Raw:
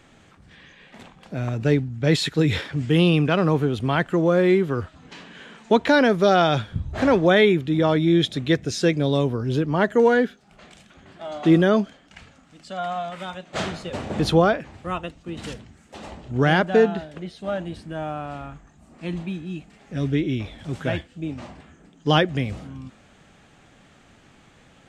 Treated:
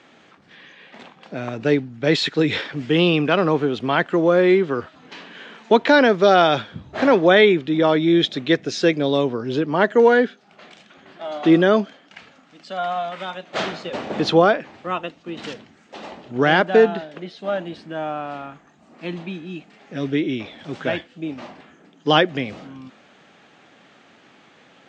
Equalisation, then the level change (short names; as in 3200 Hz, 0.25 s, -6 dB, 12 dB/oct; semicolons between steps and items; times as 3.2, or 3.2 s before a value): BPF 250–6900 Hz; air absorption 140 m; high shelf 4900 Hz +10 dB; +4.0 dB